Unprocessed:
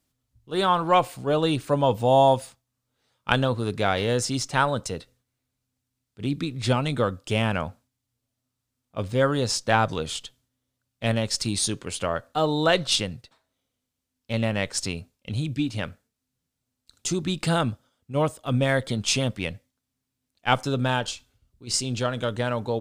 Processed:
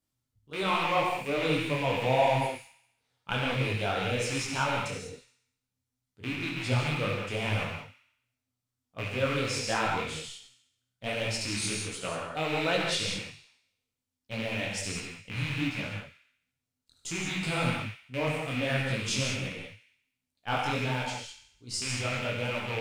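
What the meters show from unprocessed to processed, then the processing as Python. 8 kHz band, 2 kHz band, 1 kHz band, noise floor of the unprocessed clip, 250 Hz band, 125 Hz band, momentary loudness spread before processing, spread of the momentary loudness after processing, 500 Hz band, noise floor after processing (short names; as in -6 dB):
-6.0 dB, -1.5 dB, -6.5 dB, -82 dBFS, -7.0 dB, -5.5 dB, 12 LU, 13 LU, -7.0 dB, under -85 dBFS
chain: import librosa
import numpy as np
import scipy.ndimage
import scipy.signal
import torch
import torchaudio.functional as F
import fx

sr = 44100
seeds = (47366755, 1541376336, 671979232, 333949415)

y = fx.rattle_buzz(x, sr, strikes_db=-32.0, level_db=-15.0)
y = fx.notch(y, sr, hz=2600.0, q=29.0)
y = fx.echo_wet_highpass(y, sr, ms=70, feedback_pct=54, hz=1800.0, wet_db=-10.5)
y = fx.rev_gated(y, sr, seeds[0], gate_ms=220, shape='flat', drr_db=-0.5)
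y = fx.detune_double(y, sr, cents=46)
y = y * librosa.db_to_amplitude(-6.0)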